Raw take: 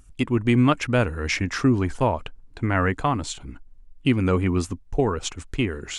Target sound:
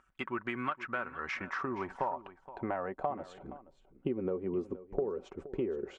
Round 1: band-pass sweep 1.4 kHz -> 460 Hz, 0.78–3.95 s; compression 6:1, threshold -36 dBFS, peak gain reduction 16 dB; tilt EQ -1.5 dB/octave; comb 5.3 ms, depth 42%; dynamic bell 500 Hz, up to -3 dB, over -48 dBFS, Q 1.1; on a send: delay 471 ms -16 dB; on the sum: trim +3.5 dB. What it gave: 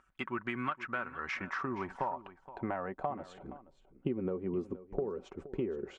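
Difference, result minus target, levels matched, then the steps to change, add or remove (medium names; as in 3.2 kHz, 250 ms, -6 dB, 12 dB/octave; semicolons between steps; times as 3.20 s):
125 Hz band +3.0 dB
change: dynamic bell 160 Hz, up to -3 dB, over -48 dBFS, Q 1.1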